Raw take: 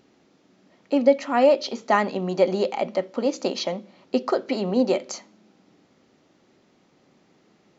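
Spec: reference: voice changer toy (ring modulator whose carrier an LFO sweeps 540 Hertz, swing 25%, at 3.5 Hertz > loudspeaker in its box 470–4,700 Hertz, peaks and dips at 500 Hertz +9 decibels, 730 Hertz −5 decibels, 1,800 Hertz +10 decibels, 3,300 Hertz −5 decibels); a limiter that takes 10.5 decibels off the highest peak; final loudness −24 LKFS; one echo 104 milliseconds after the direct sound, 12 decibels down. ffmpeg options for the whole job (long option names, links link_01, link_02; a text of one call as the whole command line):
ffmpeg -i in.wav -af "alimiter=limit=-15dB:level=0:latency=1,aecho=1:1:104:0.251,aeval=exprs='val(0)*sin(2*PI*540*n/s+540*0.25/3.5*sin(2*PI*3.5*n/s))':channel_layout=same,highpass=470,equalizer=frequency=500:width_type=q:width=4:gain=9,equalizer=frequency=730:width_type=q:width=4:gain=-5,equalizer=frequency=1800:width_type=q:width=4:gain=10,equalizer=frequency=3300:width_type=q:width=4:gain=-5,lowpass=frequency=4700:width=0.5412,lowpass=frequency=4700:width=1.3066,volume=7dB" out.wav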